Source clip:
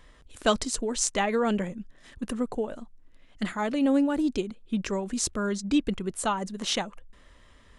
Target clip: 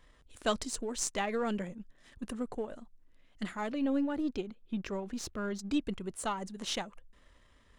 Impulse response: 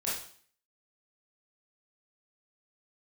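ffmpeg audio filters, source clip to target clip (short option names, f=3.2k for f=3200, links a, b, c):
-filter_complex "[0:a]aeval=exprs='if(lt(val(0),0),0.708*val(0),val(0))':c=same,asettb=1/sr,asplit=3[a][b][c];[a]atrim=end=3.714[d];[b]atrim=start=3.71:end=5.59,asetpts=PTS-STARTPTS,afade=t=in:d=0.004:c=qsin,afade=t=out:st=1.876:d=0.004:c=qsin,equalizer=f=8.6k:w=1.3:g=-12[e];[c]atrim=start=5.586[f];[d][e]acrossfade=d=0.004:c1=hsin:c2=qsin[g];[g][f]acrossfade=d=0.004:c1=qsin:c2=hsin,volume=-6dB"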